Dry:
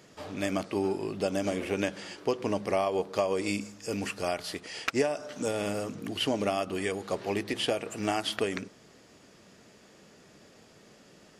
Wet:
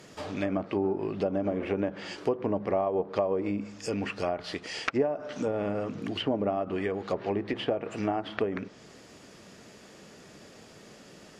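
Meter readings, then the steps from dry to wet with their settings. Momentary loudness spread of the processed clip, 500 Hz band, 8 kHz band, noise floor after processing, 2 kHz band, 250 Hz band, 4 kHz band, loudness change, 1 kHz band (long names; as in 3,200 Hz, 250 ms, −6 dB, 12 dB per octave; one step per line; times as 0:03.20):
22 LU, +1.0 dB, −9.0 dB, −52 dBFS, −2.5 dB, +1.5 dB, −4.5 dB, +0.5 dB, 0.0 dB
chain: treble cut that deepens with the level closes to 1,000 Hz, closed at −25.5 dBFS
in parallel at −2 dB: downward compressor, threshold −41 dBFS, peak gain reduction 18 dB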